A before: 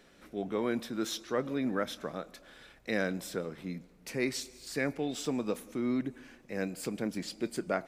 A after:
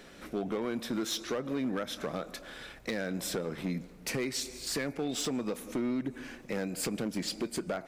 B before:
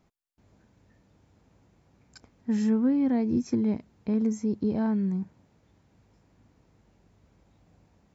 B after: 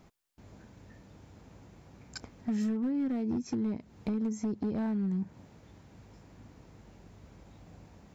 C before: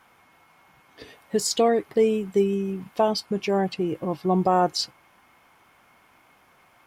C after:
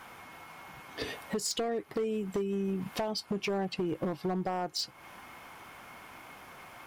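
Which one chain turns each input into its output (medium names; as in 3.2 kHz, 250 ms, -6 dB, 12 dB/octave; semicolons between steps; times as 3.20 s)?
compression 20:1, threshold -36 dBFS; overload inside the chain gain 35 dB; trim +8.5 dB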